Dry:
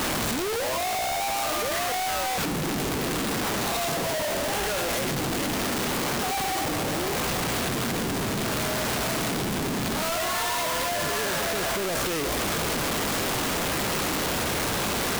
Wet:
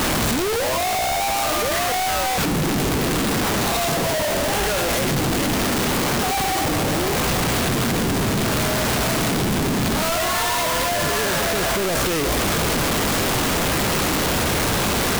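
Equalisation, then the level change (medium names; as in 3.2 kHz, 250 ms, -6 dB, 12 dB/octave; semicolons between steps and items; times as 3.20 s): bass shelf 160 Hz +5.5 dB; +5.5 dB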